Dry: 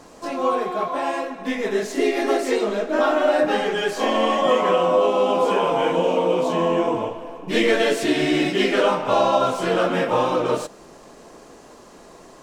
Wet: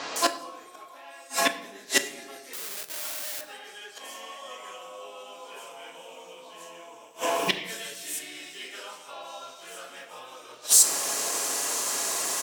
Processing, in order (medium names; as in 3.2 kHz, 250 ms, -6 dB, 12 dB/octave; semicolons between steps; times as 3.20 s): 7.39–8.03 s: treble shelf 5.7 kHz +10 dB; bands offset in time lows, highs 160 ms, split 4.3 kHz; inverted gate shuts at -19 dBFS, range -34 dB; 2.53–3.41 s: Schmitt trigger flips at -58.5 dBFS; differentiator; reverberation RT60 1.1 s, pre-delay 7 ms, DRR 8 dB; loudness maximiser +33.5 dB; trim -5 dB